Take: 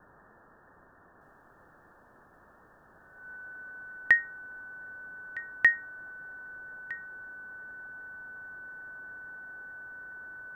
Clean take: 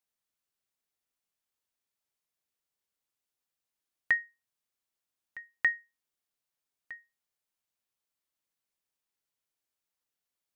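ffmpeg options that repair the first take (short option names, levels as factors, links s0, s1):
-af "bandreject=f=1500:w=30,afwtdn=0.004,asetnsamples=n=441:p=0,asendcmd='1.21 volume volume -5.5dB',volume=1"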